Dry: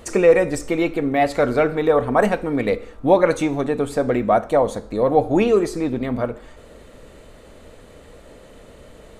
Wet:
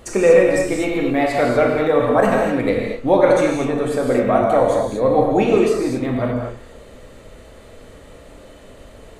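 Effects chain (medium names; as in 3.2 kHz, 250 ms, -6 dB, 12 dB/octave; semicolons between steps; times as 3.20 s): gated-style reverb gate 270 ms flat, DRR -2 dB; trim -1.5 dB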